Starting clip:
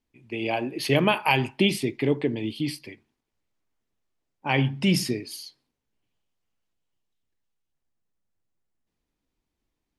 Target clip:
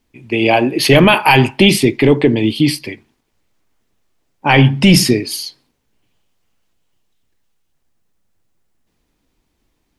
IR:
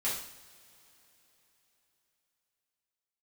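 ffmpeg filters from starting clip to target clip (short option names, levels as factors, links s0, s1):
-af "apsyclip=7.08,volume=0.794"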